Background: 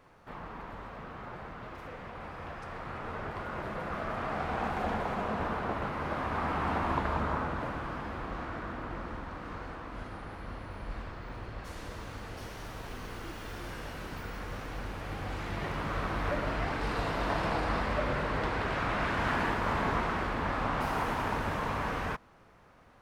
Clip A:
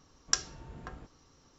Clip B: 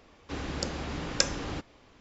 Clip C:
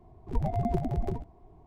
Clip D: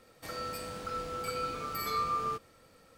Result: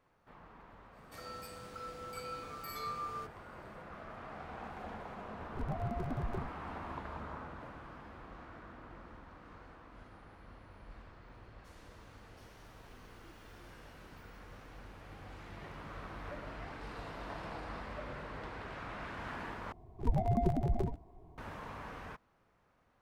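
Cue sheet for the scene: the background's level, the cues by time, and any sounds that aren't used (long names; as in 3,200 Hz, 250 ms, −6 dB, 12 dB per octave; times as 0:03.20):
background −13 dB
0:00.89: mix in D −8.5 dB, fades 0.10 s
0:05.26: mix in C −6 dB + brickwall limiter −23 dBFS
0:19.72: overwrite with C −2 dB
not used: A, B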